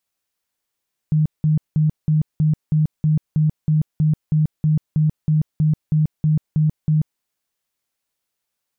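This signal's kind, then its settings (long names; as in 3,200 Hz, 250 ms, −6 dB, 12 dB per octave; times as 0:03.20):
tone bursts 154 Hz, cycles 21, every 0.32 s, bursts 19, −13 dBFS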